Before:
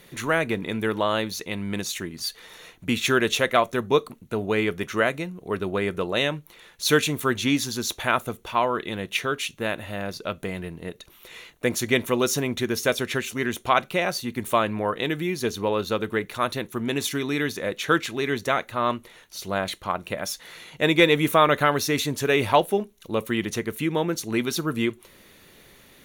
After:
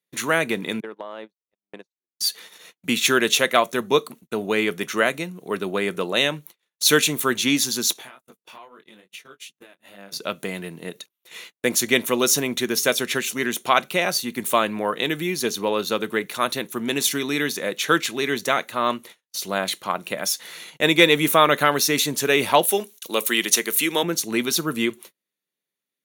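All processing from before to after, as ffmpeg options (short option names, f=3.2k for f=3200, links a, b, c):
-filter_complex "[0:a]asettb=1/sr,asplit=3[a][b][c];[a]atrim=end=0.804[d];[b]atrim=start=0.8:end=2.2,asetpts=PTS-STARTPTS,afade=t=in:d=0.004:c=qsin,afade=t=out:st=1.396:d=0.004:c=qsin,agate=range=-30dB:threshold=-27dB:ratio=16:release=100:detection=peak,bandpass=f=620:t=q:w=0.72,acompressor=threshold=-31dB:ratio=12:attack=3.2:release=140:knee=1:detection=peak[e];[c]atrim=start=2.196[f];[d][e]acrossfade=d=0.004:c1=hsin:c2=qsin[g];[g][f]acrossfade=d=0.004:c1=qsin:c2=hsin,asettb=1/sr,asplit=3[h][i][j];[h]atrim=end=7.934[k];[i]atrim=start=7.93:end=10.12,asetpts=PTS-STARTPTS,afade=t=in:d=0.004:c=qsin,afade=t=out:st=2.186:d=0.004:c=qsin,highpass=f=120:w=0.5412,highpass=f=120:w=1.3066,acompressor=threshold=-37dB:ratio=10:attack=3.2:release=140:knee=1:detection=peak,flanger=delay=20:depth=3.4:speed=2.4[l];[j]atrim=start=10.116[m];[k][l]acrossfade=d=0.004:c1=hsin:c2=qsin[n];[n][m]acrossfade=d=0.004:c1=qsin:c2=hsin,asettb=1/sr,asplit=3[o][p][q];[o]atrim=end=22.634[r];[p]atrim=start=22.63:end=24.03,asetpts=PTS-STARTPTS,afade=t=in:d=0.004:c=qsin,afade=t=out:st=1.396:d=0.004:c=qsin,highpass=270,highshelf=f=2.3k:g=10.5[s];[q]atrim=start=24.026[t];[r][s]acrossfade=d=0.004:c1=hsin:c2=qsin[u];[u][t]acrossfade=d=0.004:c1=qsin:c2=hsin,highpass=f=150:w=0.5412,highpass=f=150:w=1.3066,agate=range=-40dB:threshold=-44dB:ratio=16:detection=peak,highshelf=f=3.3k:g=8.5,volume=1dB"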